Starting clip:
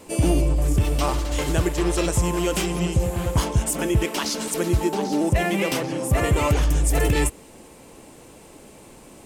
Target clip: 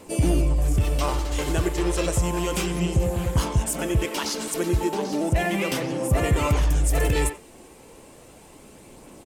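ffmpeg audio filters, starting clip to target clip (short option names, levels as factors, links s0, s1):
-filter_complex "[0:a]asplit=2[s0][s1];[s1]adelay=90,highpass=300,lowpass=3400,asoftclip=type=hard:threshold=0.112,volume=0.355[s2];[s0][s2]amix=inputs=2:normalize=0,aphaser=in_gain=1:out_gain=1:delay=2.8:decay=0.23:speed=0.33:type=triangular,acontrast=35,volume=0.422"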